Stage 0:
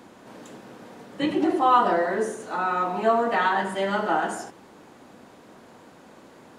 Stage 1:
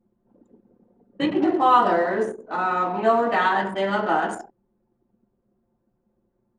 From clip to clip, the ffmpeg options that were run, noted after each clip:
-af "anlmdn=15.8,volume=2dB"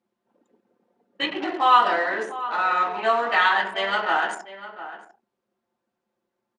-filter_complex "[0:a]bandpass=f=3k:t=q:w=0.78:csg=0,asplit=2[a][b];[b]adelay=699.7,volume=-13dB,highshelf=f=4k:g=-15.7[c];[a][c]amix=inputs=2:normalize=0,volume=7.5dB"

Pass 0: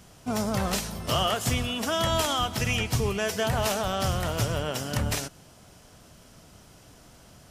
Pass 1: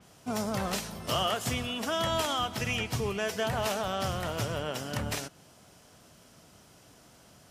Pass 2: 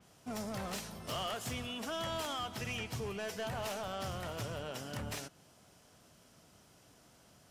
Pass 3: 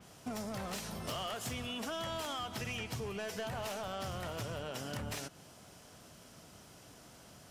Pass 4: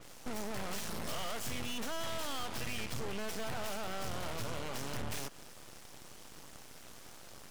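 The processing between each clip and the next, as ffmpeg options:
-af "highpass=f=130:p=1,adynamicequalizer=threshold=0.00708:dfrequency=4500:dqfactor=0.7:tfrequency=4500:tqfactor=0.7:attack=5:release=100:ratio=0.375:range=2:mode=cutabove:tftype=highshelf,volume=-3dB"
-af "asoftclip=type=tanh:threshold=-26.5dB,volume=-6dB"
-af "acompressor=threshold=-44dB:ratio=6,volume=6.5dB"
-af "aeval=exprs='(tanh(178*val(0)+0.8)-tanh(0.8))/178':c=same,aeval=exprs='abs(val(0))':c=same,volume=10dB"

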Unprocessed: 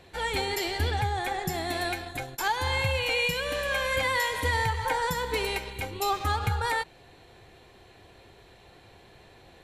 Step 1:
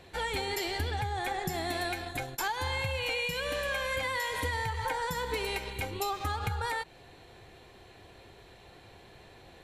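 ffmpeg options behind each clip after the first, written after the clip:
-af "acompressor=threshold=-29dB:ratio=6"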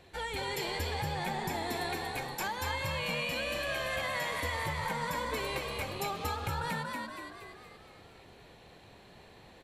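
-filter_complex "[0:a]asplit=8[a][b][c][d][e][f][g][h];[b]adelay=235,afreqshift=73,volume=-3dB[i];[c]adelay=470,afreqshift=146,volume=-8.4dB[j];[d]adelay=705,afreqshift=219,volume=-13.7dB[k];[e]adelay=940,afreqshift=292,volume=-19.1dB[l];[f]adelay=1175,afreqshift=365,volume=-24.4dB[m];[g]adelay=1410,afreqshift=438,volume=-29.8dB[n];[h]adelay=1645,afreqshift=511,volume=-35.1dB[o];[a][i][j][k][l][m][n][o]amix=inputs=8:normalize=0,volume=-4dB"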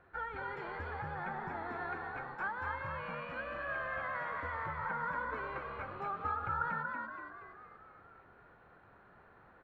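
-af "lowpass=f=1.4k:t=q:w=6.6,volume=-8.5dB"

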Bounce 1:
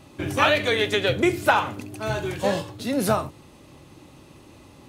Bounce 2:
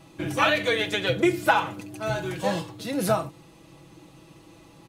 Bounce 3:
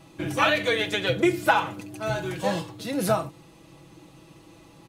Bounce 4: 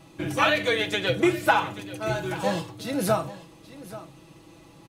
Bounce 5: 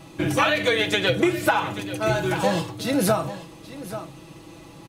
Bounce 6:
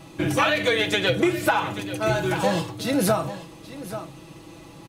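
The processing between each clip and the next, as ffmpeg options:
-af "aecho=1:1:6.1:0.65,volume=-3.5dB"
-af anull
-af "aecho=1:1:833:0.15"
-af "acompressor=threshold=-23dB:ratio=5,volume=6.5dB"
-af "asoftclip=type=tanh:threshold=-6.5dB"

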